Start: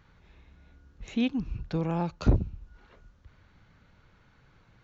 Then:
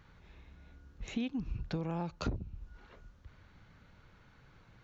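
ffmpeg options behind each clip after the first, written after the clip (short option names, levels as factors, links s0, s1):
-af "acompressor=threshold=0.0251:ratio=10"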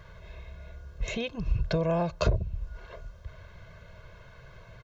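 -af "equalizer=f=650:w=6.1:g=11,aecho=1:1:1.9:0.9,volume=2.24"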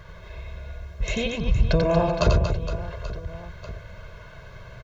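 -af "aecho=1:1:90|234|464.4|833|1423:0.631|0.398|0.251|0.158|0.1,volume=1.78"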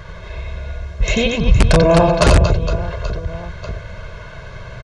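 -filter_complex "[0:a]asplit=2[s0][s1];[s1]aeval=exprs='(mod(3.76*val(0)+1,2)-1)/3.76':c=same,volume=0.708[s2];[s0][s2]amix=inputs=2:normalize=0,aresample=22050,aresample=44100,volume=1.78"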